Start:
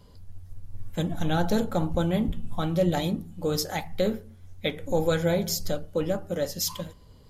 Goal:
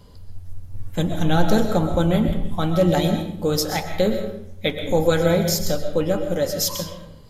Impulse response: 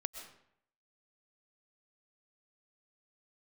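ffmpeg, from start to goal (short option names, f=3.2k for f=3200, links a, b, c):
-filter_complex "[1:a]atrim=start_sample=2205[a];[0:a][a]afir=irnorm=-1:irlink=0,volume=7dB"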